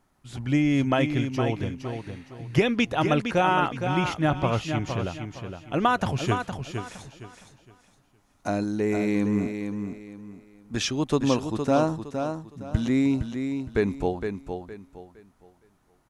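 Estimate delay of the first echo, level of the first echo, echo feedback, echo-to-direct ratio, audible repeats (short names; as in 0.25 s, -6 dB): 0.463 s, -7.0 dB, 29%, -6.5 dB, 3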